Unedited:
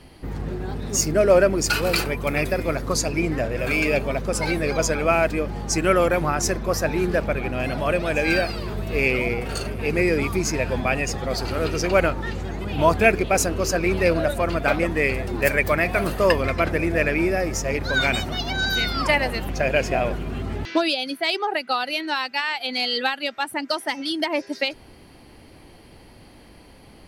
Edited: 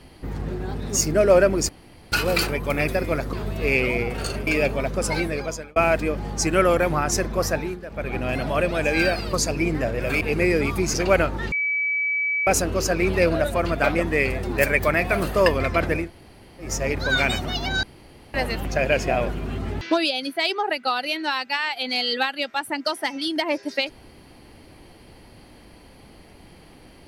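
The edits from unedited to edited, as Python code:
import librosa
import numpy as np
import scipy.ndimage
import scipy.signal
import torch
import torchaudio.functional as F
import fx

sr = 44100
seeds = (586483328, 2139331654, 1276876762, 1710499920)

y = fx.edit(x, sr, fx.insert_room_tone(at_s=1.69, length_s=0.43),
    fx.swap(start_s=2.9, length_s=0.88, other_s=8.64, other_length_s=1.14),
    fx.fade_out_span(start_s=4.45, length_s=0.62),
    fx.fade_down_up(start_s=6.81, length_s=0.67, db=-15.0, fade_s=0.29),
    fx.cut(start_s=10.51, length_s=1.27),
    fx.bleep(start_s=12.36, length_s=0.95, hz=2290.0, db=-20.5),
    fx.room_tone_fill(start_s=16.87, length_s=0.63, crossfade_s=0.16),
    fx.room_tone_fill(start_s=18.67, length_s=0.51), tone=tone)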